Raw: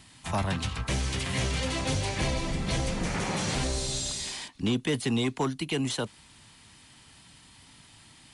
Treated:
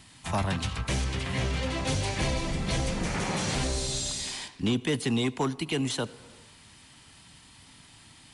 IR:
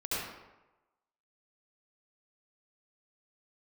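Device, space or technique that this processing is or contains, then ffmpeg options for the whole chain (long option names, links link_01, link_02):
compressed reverb return: -filter_complex "[0:a]asplit=2[link_01][link_02];[1:a]atrim=start_sample=2205[link_03];[link_02][link_03]afir=irnorm=-1:irlink=0,acompressor=threshold=-28dB:ratio=6,volume=-17dB[link_04];[link_01][link_04]amix=inputs=2:normalize=0,asettb=1/sr,asplit=3[link_05][link_06][link_07];[link_05]atrim=end=1.044[link_08];[link_06]atrim=start=1.04:end=1.85,asetpts=PTS-STARTPTS,afade=type=in:duration=0.004:curve=qsin,afade=type=out:start_time=0.806:duration=0.004:curve=qsin,highshelf=frequency=5000:gain=-10.5[link_09];[link_07]atrim=start=1.846[link_10];[link_08][link_09]acrossfade=duration=0.004:curve1=hsin:curve2=qsin[link_11];[link_11][link_10]acrossfade=duration=0.004:curve1=qsin:curve2=hsin"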